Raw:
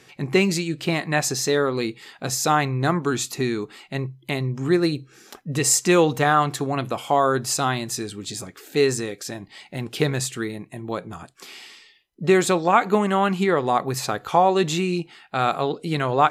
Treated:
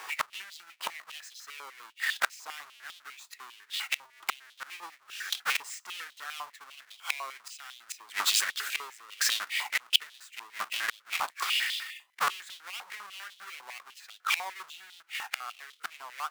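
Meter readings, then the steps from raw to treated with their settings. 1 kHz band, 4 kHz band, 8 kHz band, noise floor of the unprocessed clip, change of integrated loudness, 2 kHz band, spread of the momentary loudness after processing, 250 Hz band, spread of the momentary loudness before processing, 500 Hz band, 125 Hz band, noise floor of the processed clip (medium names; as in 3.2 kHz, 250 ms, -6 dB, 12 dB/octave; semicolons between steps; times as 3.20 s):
-15.0 dB, -1.0 dB, -10.0 dB, -54 dBFS, -10.0 dB, -4.5 dB, 18 LU, under -40 dB, 14 LU, -32.0 dB, under -40 dB, -63 dBFS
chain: square wave that keeps the level; inverted gate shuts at -19 dBFS, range -30 dB; step-sequenced high-pass 10 Hz 990–3400 Hz; trim +3.5 dB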